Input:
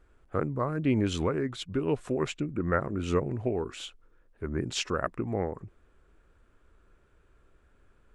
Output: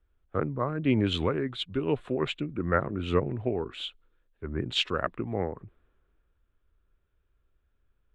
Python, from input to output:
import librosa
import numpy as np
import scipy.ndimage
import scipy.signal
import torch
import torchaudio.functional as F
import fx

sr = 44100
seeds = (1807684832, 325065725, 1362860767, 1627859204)

y = fx.high_shelf_res(x, sr, hz=4500.0, db=-8.0, q=3.0)
y = fx.band_widen(y, sr, depth_pct=40)